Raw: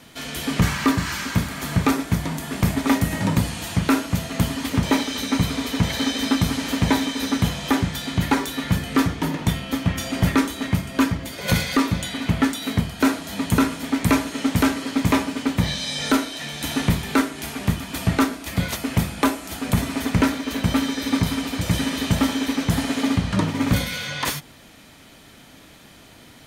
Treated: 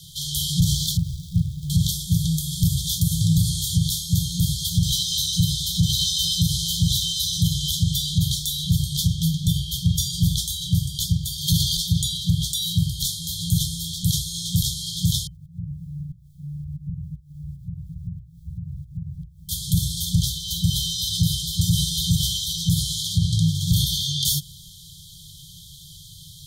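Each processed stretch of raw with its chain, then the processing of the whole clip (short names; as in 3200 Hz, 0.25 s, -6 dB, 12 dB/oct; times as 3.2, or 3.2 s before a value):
0.97–1.7 median filter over 41 samples + core saturation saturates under 270 Hz
15.27–19.49 steep low-pass 540 Hz 72 dB/oct + requantised 12-bit, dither none + compressor 8:1, threshold -32 dBFS
whole clip: FFT band-reject 180–3100 Hz; notches 60/120 Hz; limiter -18 dBFS; gain +8 dB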